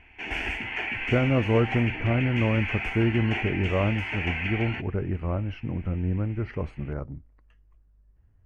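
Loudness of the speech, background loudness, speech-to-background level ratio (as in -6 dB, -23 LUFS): -27.0 LUFS, -31.0 LUFS, 4.0 dB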